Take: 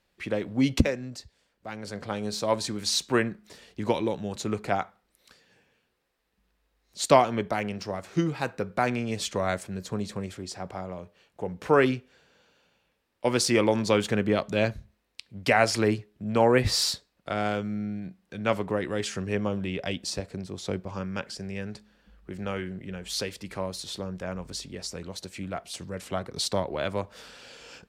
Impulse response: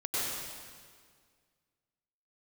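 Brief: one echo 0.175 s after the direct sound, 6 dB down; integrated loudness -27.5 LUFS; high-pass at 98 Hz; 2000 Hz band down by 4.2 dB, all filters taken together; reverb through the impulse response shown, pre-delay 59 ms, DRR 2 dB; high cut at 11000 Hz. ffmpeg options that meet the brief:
-filter_complex "[0:a]highpass=98,lowpass=11k,equalizer=f=2k:t=o:g=-5.5,aecho=1:1:175:0.501,asplit=2[a][b];[1:a]atrim=start_sample=2205,adelay=59[c];[b][c]afir=irnorm=-1:irlink=0,volume=-9.5dB[d];[a][d]amix=inputs=2:normalize=0,volume=-1.5dB"

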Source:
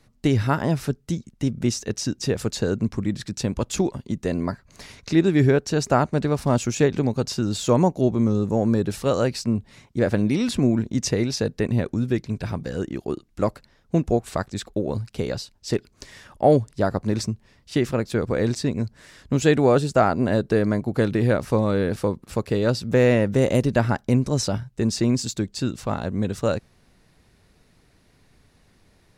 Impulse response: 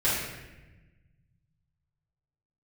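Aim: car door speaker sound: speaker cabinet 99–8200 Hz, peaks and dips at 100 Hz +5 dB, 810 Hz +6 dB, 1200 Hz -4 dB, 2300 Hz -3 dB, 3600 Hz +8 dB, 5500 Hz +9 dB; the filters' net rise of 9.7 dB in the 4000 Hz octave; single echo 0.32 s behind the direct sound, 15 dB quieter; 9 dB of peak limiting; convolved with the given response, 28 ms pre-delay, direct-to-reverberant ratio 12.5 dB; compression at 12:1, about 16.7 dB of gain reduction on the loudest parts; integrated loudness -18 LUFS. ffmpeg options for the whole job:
-filter_complex "[0:a]equalizer=f=4k:t=o:g=4,acompressor=threshold=-29dB:ratio=12,alimiter=level_in=0.5dB:limit=-24dB:level=0:latency=1,volume=-0.5dB,aecho=1:1:320:0.178,asplit=2[a][b];[1:a]atrim=start_sample=2205,adelay=28[c];[b][c]afir=irnorm=-1:irlink=0,volume=-25dB[d];[a][d]amix=inputs=2:normalize=0,highpass=99,equalizer=f=100:t=q:w=4:g=5,equalizer=f=810:t=q:w=4:g=6,equalizer=f=1.2k:t=q:w=4:g=-4,equalizer=f=2.3k:t=q:w=4:g=-3,equalizer=f=3.6k:t=q:w=4:g=8,equalizer=f=5.5k:t=q:w=4:g=9,lowpass=f=8.2k:w=0.5412,lowpass=f=8.2k:w=1.3066,volume=16dB"

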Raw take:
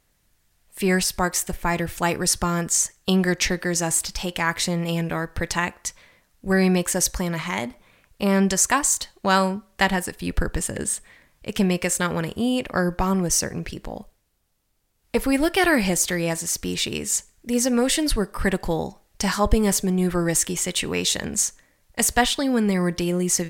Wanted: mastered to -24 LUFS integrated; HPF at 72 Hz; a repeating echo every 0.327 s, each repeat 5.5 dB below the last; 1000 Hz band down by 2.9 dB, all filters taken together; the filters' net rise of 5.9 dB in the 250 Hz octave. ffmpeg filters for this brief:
-af "highpass=72,equalizer=f=250:t=o:g=8.5,equalizer=f=1k:t=o:g=-4.5,aecho=1:1:327|654|981|1308|1635|1962|2289:0.531|0.281|0.149|0.079|0.0419|0.0222|0.0118,volume=-5.5dB"

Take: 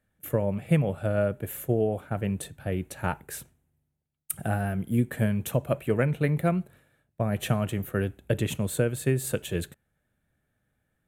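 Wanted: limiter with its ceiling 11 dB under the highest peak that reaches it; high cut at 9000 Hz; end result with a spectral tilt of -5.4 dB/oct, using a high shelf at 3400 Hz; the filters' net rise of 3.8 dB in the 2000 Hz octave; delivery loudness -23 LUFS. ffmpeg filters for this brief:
-af "lowpass=9k,equalizer=f=2k:t=o:g=4,highshelf=f=3.4k:g=3.5,volume=9.5dB,alimiter=limit=-11dB:level=0:latency=1"

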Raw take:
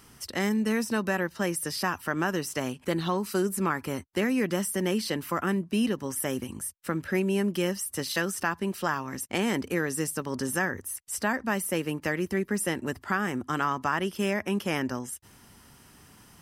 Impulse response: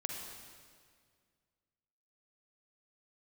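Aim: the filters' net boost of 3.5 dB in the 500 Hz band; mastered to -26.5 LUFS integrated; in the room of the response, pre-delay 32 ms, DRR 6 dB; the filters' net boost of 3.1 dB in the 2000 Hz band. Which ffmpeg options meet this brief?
-filter_complex "[0:a]equalizer=f=500:t=o:g=4.5,equalizer=f=2k:t=o:g=3.5,asplit=2[a][b];[1:a]atrim=start_sample=2205,adelay=32[c];[b][c]afir=irnorm=-1:irlink=0,volume=-7dB[d];[a][d]amix=inputs=2:normalize=0,volume=-0.5dB"

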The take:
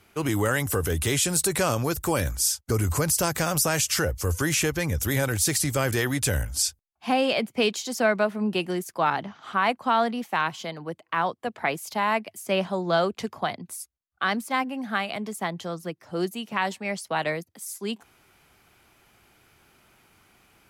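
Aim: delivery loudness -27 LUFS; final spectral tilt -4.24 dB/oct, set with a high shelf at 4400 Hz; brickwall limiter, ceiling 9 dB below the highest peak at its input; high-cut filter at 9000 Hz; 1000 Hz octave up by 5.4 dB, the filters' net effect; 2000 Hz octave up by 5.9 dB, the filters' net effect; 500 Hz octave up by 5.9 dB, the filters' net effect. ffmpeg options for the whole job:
-af "lowpass=9k,equalizer=f=500:t=o:g=6,equalizer=f=1k:t=o:g=3.5,equalizer=f=2k:t=o:g=7,highshelf=f=4.4k:g=-5,volume=-1dB,alimiter=limit=-15dB:level=0:latency=1"

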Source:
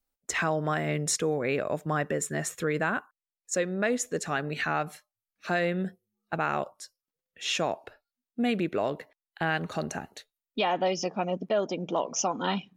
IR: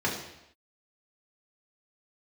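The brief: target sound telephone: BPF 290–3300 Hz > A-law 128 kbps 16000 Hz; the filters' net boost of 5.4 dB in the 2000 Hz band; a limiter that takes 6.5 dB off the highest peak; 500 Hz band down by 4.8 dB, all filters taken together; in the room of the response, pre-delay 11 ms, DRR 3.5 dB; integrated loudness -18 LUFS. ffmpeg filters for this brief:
-filter_complex "[0:a]equalizer=f=500:t=o:g=-6,equalizer=f=2k:t=o:g=8,alimiter=limit=-18.5dB:level=0:latency=1,asplit=2[a][b];[1:a]atrim=start_sample=2205,adelay=11[c];[b][c]afir=irnorm=-1:irlink=0,volume=-14dB[d];[a][d]amix=inputs=2:normalize=0,highpass=290,lowpass=3.3k,volume=12.5dB" -ar 16000 -c:a pcm_alaw

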